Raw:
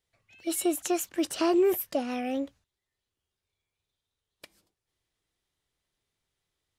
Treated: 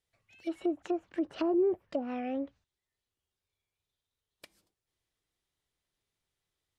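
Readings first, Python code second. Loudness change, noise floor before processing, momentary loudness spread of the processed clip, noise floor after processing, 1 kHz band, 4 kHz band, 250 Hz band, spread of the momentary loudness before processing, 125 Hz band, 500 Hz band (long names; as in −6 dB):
−5.0 dB, below −85 dBFS, 12 LU, below −85 dBFS, −6.5 dB, −13.0 dB, −3.5 dB, 10 LU, can't be measured, −4.0 dB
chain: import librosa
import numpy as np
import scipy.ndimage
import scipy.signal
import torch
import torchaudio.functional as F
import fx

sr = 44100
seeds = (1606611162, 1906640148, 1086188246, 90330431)

y = fx.env_lowpass_down(x, sr, base_hz=670.0, full_db=-24.0)
y = y * 10.0 ** (-3.5 / 20.0)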